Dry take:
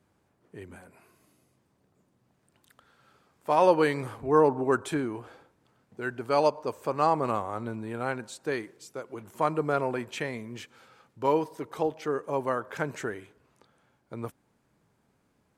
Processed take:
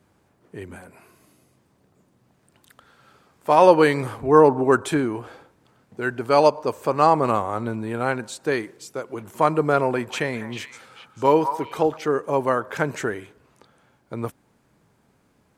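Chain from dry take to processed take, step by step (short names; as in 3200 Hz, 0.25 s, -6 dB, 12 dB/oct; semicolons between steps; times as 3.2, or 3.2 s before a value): 9.9–11.97 delay with a stepping band-pass 0.198 s, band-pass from 1100 Hz, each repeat 1.4 oct, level -4.5 dB; gain +7.5 dB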